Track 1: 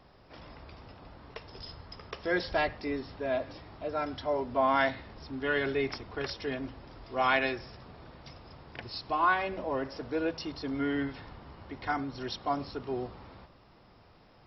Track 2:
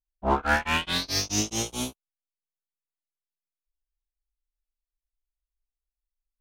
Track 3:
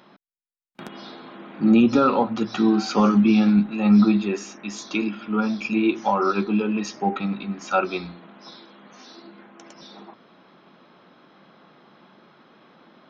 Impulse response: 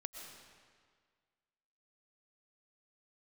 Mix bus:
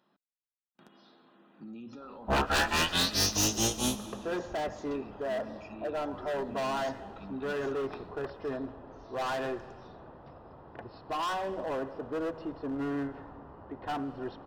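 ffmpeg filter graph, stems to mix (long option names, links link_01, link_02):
-filter_complex "[0:a]lowpass=1000,lowshelf=frequency=230:gain=-11,asoftclip=type=hard:threshold=-35dB,adelay=2000,volume=3dB,asplit=2[link_01][link_02];[link_02]volume=-7.5dB[link_03];[1:a]aeval=exprs='0.0841*(abs(mod(val(0)/0.0841+3,4)-2)-1)':channel_layout=same,adelay=2050,volume=-1.5dB,asplit=2[link_04][link_05];[link_05]volume=-4dB[link_06];[2:a]alimiter=limit=-19dB:level=0:latency=1:release=40,volume=-20dB[link_07];[3:a]atrim=start_sample=2205[link_08];[link_03][link_06]amix=inputs=2:normalize=0[link_09];[link_09][link_08]afir=irnorm=-1:irlink=0[link_10];[link_01][link_04][link_07][link_10]amix=inputs=4:normalize=0,bandreject=frequency=2200:width=6.5"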